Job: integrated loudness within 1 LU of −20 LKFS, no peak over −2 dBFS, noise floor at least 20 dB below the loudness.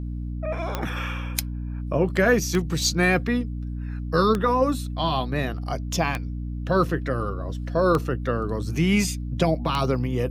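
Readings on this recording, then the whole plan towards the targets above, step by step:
number of clicks 6; mains hum 60 Hz; hum harmonics up to 300 Hz; level of the hum −28 dBFS; integrated loudness −24.5 LKFS; sample peak −5.5 dBFS; target loudness −20.0 LKFS
→ click removal
hum removal 60 Hz, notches 5
level +4.5 dB
brickwall limiter −2 dBFS

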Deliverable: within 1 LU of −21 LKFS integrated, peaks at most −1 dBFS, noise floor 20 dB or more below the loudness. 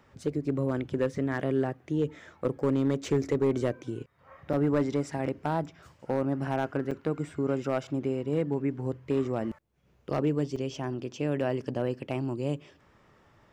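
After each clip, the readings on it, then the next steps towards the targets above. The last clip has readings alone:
share of clipped samples 0.6%; peaks flattened at −18.5 dBFS; number of dropouts 3; longest dropout 4.0 ms; integrated loudness −30.5 LKFS; sample peak −18.5 dBFS; target loudness −21.0 LKFS
→ clipped peaks rebuilt −18.5 dBFS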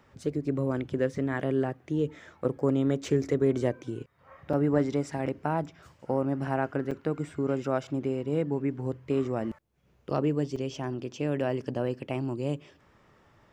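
share of clipped samples 0.0%; number of dropouts 3; longest dropout 4.0 ms
→ repair the gap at 0:04.53/0:06.91/0:10.56, 4 ms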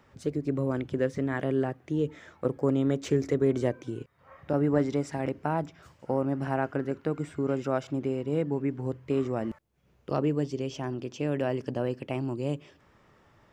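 number of dropouts 0; integrated loudness −30.0 LKFS; sample peak −11.5 dBFS; target loudness −21.0 LKFS
→ level +9 dB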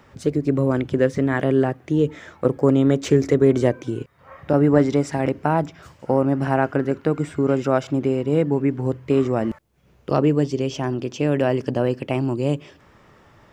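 integrated loudness −21.0 LKFS; sample peak −2.5 dBFS; background noise floor −54 dBFS

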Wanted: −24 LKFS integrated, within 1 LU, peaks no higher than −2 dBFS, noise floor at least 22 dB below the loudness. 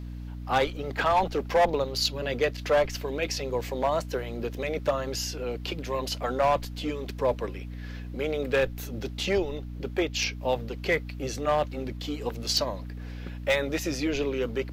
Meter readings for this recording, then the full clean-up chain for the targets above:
share of clipped samples 0.6%; peaks flattened at −17.0 dBFS; mains hum 60 Hz; hum harmonics up to 300 Hz; level of the hum −35 dBFS; integrated loudness −28.5 LKFS; sample peak −17.0 dBFS; target loudness −24.0 LKFS
→ clipped peaks rebuilt −17 dBFS
hum removal 60 Hz, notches 5
level +4.5 dB

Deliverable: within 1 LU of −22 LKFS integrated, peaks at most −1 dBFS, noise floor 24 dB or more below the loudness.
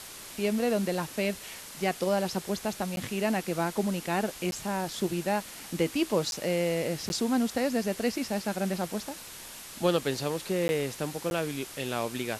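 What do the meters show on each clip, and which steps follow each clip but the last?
number of dropouts 6; longest dropout 11 ms; background noise floor −45 dBFS; target noise floor −54 dBFS; integrated loudness −30.0 LKFS; sample peak −13.0 dBFS; target loudness −22.0 LKFS
→ repair the gap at 0:02.96/0:04.51/0:06.31/0:07.09/0:10.68/0:11.30, 11 ms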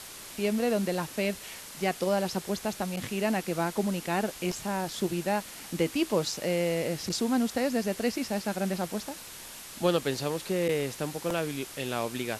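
number of dropouts 0; background noise floor −45 dBFS; target noise floor −54 dBFS
→ broadband denoise 9 dB, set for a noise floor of −45 dBFS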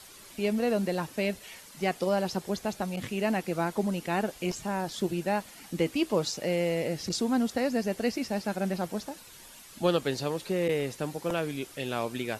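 background noise floor −50 dBFS; target noise floor −55 dBFS
→ broadband denoise 6 dB, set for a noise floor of −50 dBFS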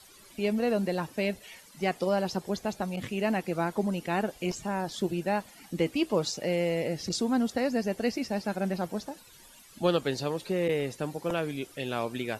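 background noise floor −54 dBFS; target noise floor −55 dBFS
→ broadband denoise 6 dB, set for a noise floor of −54 dBFS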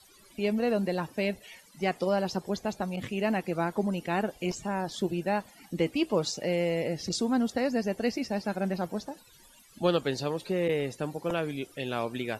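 background noise floor −57 dBFS; integrated loudness −30.5 LKFS; sample peak −13.5 dBFS; target loudness −22.0 LKFS
→ level +8.5 dB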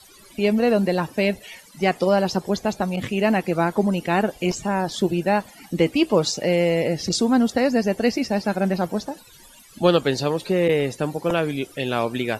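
integrated loudness −22.0 LKFS; sample peak −5.0 dBFS; background noise floor −49 dBFS

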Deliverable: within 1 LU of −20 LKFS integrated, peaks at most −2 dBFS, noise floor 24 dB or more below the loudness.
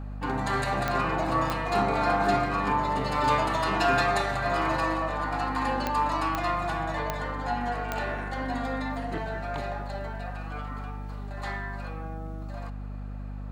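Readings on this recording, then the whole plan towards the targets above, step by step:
number of clicks 6; mains hum 50 Hz; hum harmonics up to 250 Hz; level of the hum −34 dBFS; integrated loudness −28.5 LKFS; sample peak −11.0 dBFS; target loudness −20.0 LKFS
→ click removal
hum removal 50 Hz, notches 5
level +8.5 dB

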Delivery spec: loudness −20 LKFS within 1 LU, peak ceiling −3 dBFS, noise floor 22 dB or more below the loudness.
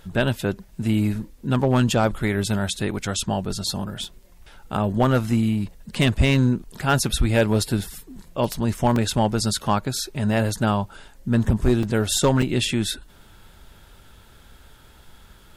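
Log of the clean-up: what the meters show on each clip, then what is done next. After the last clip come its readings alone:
share of clipped samples 0.4%; peaks flattened at −10.5 dBFS; number of dropouts 4; longest dropout 2.6 ms; integrated loudness −22.5 LKFS; sample peak −10.5 dBFS; target loudness −20.0 LKFS
→ clipped peaks rebuilt −10.5 dBFS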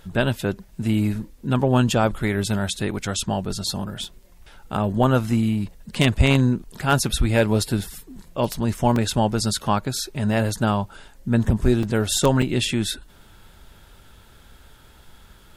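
share of clipped samples 0.0%; number of dropouts 4; longest dropout 2.6 ms
→ repair the gap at 0:04.04/0:08.96/0:11.83/0:12.42, 2.6 ms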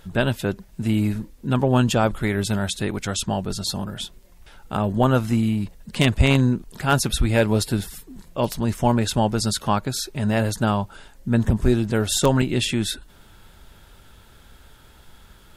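number of dropouts 0; integrated loudness −22.5 LKFS; sample peak −1.5 dBFS; target loudness −20.0 LKFS
→ level +2.5 dB
brickwall limiter −3 dBFS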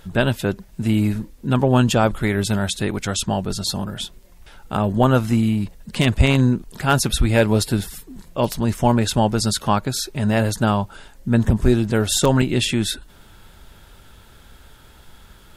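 integrated loudness −20.0 LKFS; sample peak −3.0 dBFS; background noise floor −48 dBFS

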